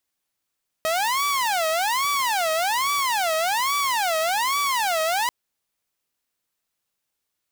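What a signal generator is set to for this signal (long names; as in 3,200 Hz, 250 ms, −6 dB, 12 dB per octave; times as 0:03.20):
siren wail 633–1,150 Hz 1.2 per second saw −18 dBFS 4.44 s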